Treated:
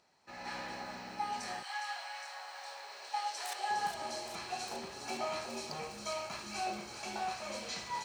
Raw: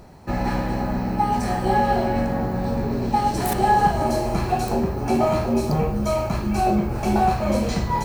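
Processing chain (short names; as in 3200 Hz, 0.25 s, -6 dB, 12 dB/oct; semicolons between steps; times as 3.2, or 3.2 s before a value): AGC gain up to 11 dB; differentiator; 1.62–3.69 HPF 1000 Hz -> 470 Hz 24 dB/oct; air absorption 130 m; thin delay 0.41 s, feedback 77%, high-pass 3100 Hz, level -6.5 dB; gain -3.5 dB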